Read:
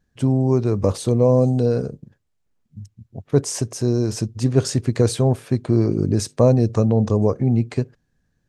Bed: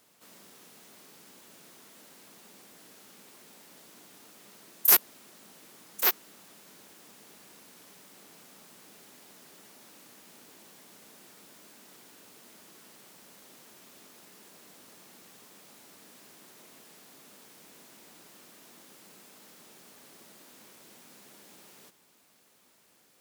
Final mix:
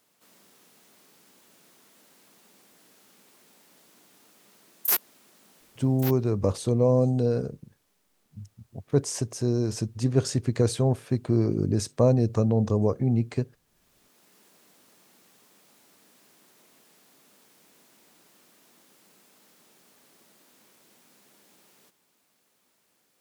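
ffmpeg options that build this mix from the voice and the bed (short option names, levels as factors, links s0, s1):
-filter_complex "[0:a]adelay=5600,volume=0.531[s0];[1:a]volume=2.66,afade=t=out:st=5.59:d=0.71:silence=0.199526,afade=t=in:st=13.66:d=0.72:silence=0.223872[s1];[s0][s1]amix=inputs=2:normalize=0"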